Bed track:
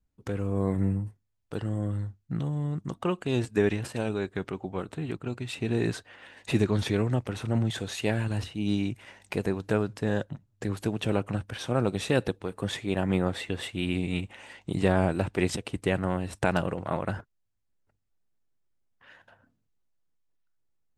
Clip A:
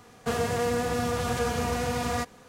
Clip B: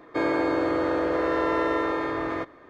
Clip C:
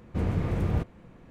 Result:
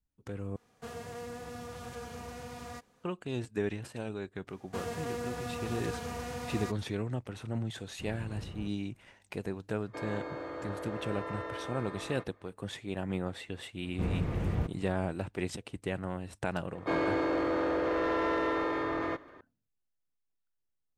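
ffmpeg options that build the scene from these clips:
ffmpeg -i bed.wav -i cue0.wav -i cue1.wav -i cue2.wav -filter_complex "[1:a]asplit=2[link_01][link_02];[3:a]asplit=2[link_03][link_04];[2:a]asplit=2[link_05][link_06];[0:a]volume=-8.5dB[link_07];[link_05]equalizer=frequency=340:width_type=o:width=0.42:gain=-5.5[link_08];[link_06]asoftclip=type=tanh:threshold=-21dB[link_09];[link_07]asplit=2[link_10][link_11];[link_10]atrim=end=0.564[link_12];[link_01]atrim=end=2.48,asetpts=PTS-STARTPTS,volume=-15.5dB[link_13];[link_11]atrim=start=3.036[link_14];[link_02]atrim=end=2.48,asetpts=PTS-STARTPTS,volume=-10.5dB,afade=type=in:duration=0.004:curve=hsin,afade=type=out:start_time=2.476:duration=0.004:curve=hsin,adelay=4470[link_15];[link_03]atrim=end=1.3,asetpts=PTS-STARTPTS,volume=-17.5dB,afade=type=in:duration=0.004:curve=hsin,afade=type=out:start_time=1.296:duration=0.004:curve=hsin,adelay=7850[link_16];[link_08]atrim=end=2.69,asetpts=PTS-STARTPTS,volume=-14dB,afade=type=in:duration=0.004:curve=hsin,afade=type=out:start_time=2.686:duration=0.004:curve=hsin,adelay=9790[link_17];[link_04]atrim=end=1.3,asetpts=PTS-STARTPTS,volume=-4.5dB,afade=type=in:duration=0.004:curve=hsin,afade=type=out:start_time=1.296:duration=0.004:curve=hsin,adelay=13840[link_18];[link_09]atrim=end=2.69,asetpts=PTS-STARTPTS,volume=-3dB,afade=type=in:duration=0.004:curve=hsin,afade=type=out:start_time=2.686:duration=0.004:curve=hsin,adelay=16720[link_19];[link_12][link_13]acrossfade=duration=0.004:curve1=hsin:curve2=hsin[link_20];[link_20][link_14]acrossfade=duration=0.004:curve1=hsin:curve2=hsin[link_21];[link_21][link_15][link_16][link_17][link_18][link_19]amix=inputs=6:normalize=0" out.wav

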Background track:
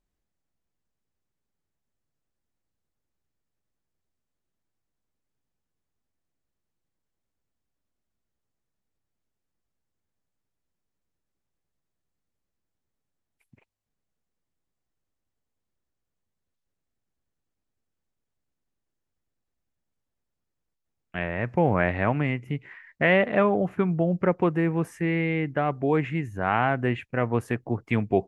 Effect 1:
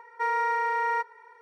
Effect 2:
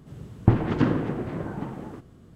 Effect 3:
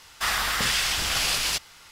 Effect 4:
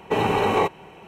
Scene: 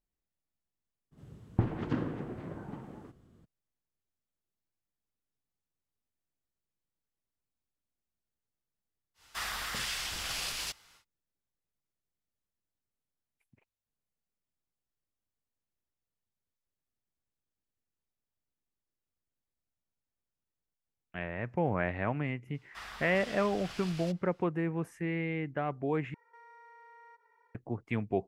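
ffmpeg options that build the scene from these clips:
ffmpeg -i bed.wav -i cue0.wav -i cue1.wav -i cue2.wav -filter_complex "[3:a]asplit=2[link_01][link_02];[0:a]volume=-8.5dB[link_03];[link_02]lowpass=frequency=2800:poles=1[link_04];[1:a]acompressor=threshold=-42dB:ratio=3:attack=3:release=101:knee=1:detection=peak[link_05];[link_03]asplit=2[link_06][link_07];[link_06]atrim=end=26.144[link_08];[link_05]atrim=end=1.41,asetpts=PTS-STARTPTS,volume=-16dB[link_09];[link_07]atrim=start=27.546[link_10];[2:a]atrim=end=2.35,asetpts=PTS-STARTPTS,volume=-10.5dB,afade=type=in:duration=0.02,afade=type=out:start_time=2.33:duration=0.02,adelay=1110[link_11];[link_01]atrim=end=1.91,asetpts=PTS-STARTPTS,volume=-11.5dB,afade=type=in:duration=0.1,afade=type=out:start_time=1.81:duration=0.1,adelay=403074S[link_12];[link_04]atrim=end=1.91,asetpts=PTS-STARTPTS,volume=-18dB,afade=type=in:duration=0.004:curve=hsin,afade=type=out:start_time=1.906:duration=0.004:curve=hsin,adelay=22540[link_13];[link_08][link_09]acrossfade=duration=0.004:curve1=hsin:curve2=hsin[link_14];[link_14][link_10]acrossfade=duration=0.004:curve1=hsin:curve2=hsin[link_15];[link_15][link_11][link_12][link_13]amix=inputs=4:normalize=0" out.wav

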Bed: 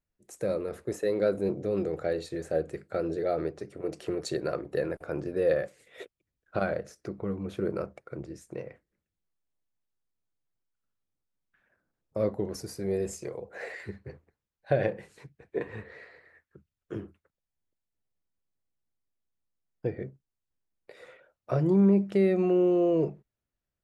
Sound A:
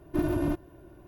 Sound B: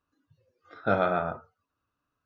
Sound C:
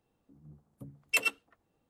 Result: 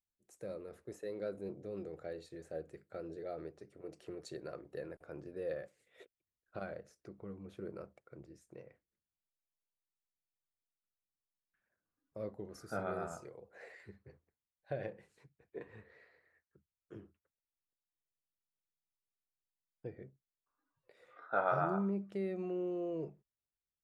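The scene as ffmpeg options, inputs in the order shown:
ffmpeg -i bed.wav -i cue0.wav -i cue1.wav -filter_complex "[2:a]asplit=2[link_01][link_02];[0:a]volume=-14.5dB[link_03];[link_01]lowpass=2300[link_04];[link_02]bandpass=frequency=990:width_type=q:width=1.7:csg=0[link_05];[link_04]atrim=end=2.25,asetpts=PTS-STARTPTS,volume=-14.5dB,afade=type=in:duration=0.004:curve=hsin,afade=type=out:start_time=2.246:duration=0.004:curve=hsin,adelay=11850[link_06];[link_05]atrim=end=2.25,asetpts=PTS-STARTPTS,volume=-2.5dB,afade=type=in:duration=0.004:curve=hsin,afade=type=out:start_time=2.246:duration=0.004:curve=hsin,adelay=20460[link_07];[link_03][link_06][link_07]amix=inputs=3:normalize=0" out.wav

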